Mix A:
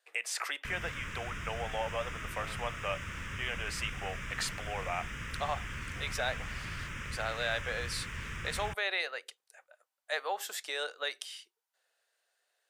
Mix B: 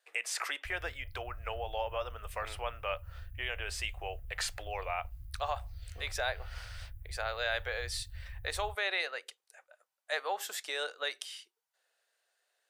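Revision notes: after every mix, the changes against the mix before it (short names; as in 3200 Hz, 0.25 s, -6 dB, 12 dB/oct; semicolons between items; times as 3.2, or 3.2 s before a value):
background: add inverse Chebyshev band-stop 230–6500 Hz, stop band 50 dB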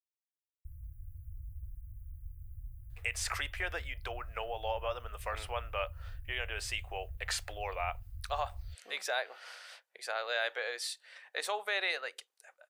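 speech: entry +2.90 s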